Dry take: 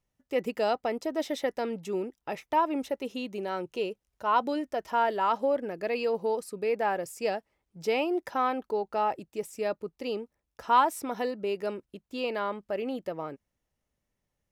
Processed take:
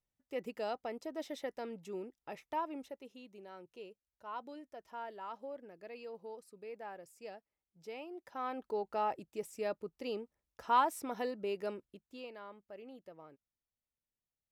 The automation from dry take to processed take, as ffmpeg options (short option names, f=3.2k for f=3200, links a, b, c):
-af "volume=1dB,afade=t=out:st=2.52:d=0.6:silence=0.421697,afade=t=in:st=8.23:d=0.56:silence=0.251189,afade=t=out:st=11.67:d=0.65:silence=0.251189"